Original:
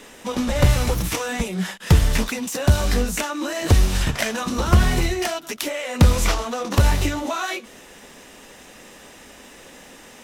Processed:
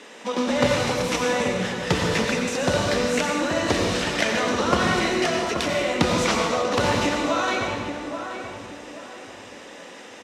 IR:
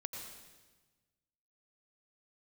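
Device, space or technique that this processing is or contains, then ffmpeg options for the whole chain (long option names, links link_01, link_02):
supermarket ceiling speaker: -filter_complex "[0:a]highpass=250,lowpass=6000[link_01];[1:a]atrim=start_sample=2205[link_02];[link_01][link_02]afir=irnorm=-1:irlink=0,asplit=2[link_03][link_04];[link_04]adelay=830,lowpass=frequency=1500:poles=1,volume=-7dB,asplit=2[link_05][link_06];[link_06]adelay=830,lowpass=frequency=1500:poles=1,volume=0.35,asplit=2[link_07][link_08];[link_08]adelay=830,lowpass=frequency=1500:poles=1,volume=0.35,asplit=2[link_09][link_10];[link_10]adelay=830,lowpass=frequency=1500:poles=1,volume=0.35[link_11];[link_03][link_05][link_07][link_09][link_11]amix=inputs=5:normalize=0,volume=4dB"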